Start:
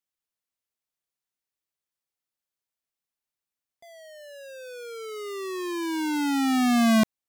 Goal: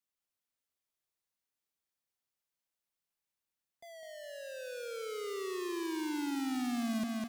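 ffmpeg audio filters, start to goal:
-filter_complex "[0:a]acompressor=threshold=-37dB:ratio=2,aecho=1:1:204|408|612|816|1020|1224:0.531|0.26|0.127|0.0625|0.0306|0.015,asoftclip=type=tanh:threshold=-27.5dB,acrossover=split=490|3000[a][b][c];[b]acompressor=threshold=-40dB:ratio=6[d];[a][d][c]amix=inputs=3:normalize=0,volume=-2.5dB"

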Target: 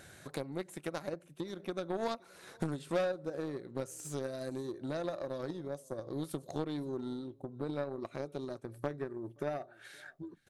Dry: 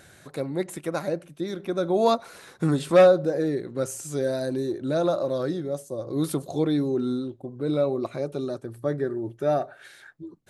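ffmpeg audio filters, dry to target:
-af "acompressor=threshold=-41dB:ratio=3,aecho=1:1:522:0.0668,aeval=exprs='0.0422*(cos(1*acos(clip(val(0)/0.0422,-1,1)))-cos(1*PI/2))+0.00841*(cos(3*acos(clip(val(0)/0.0422,-1,1)))-cos(3*PI/2))':c=same,volume=5dB"

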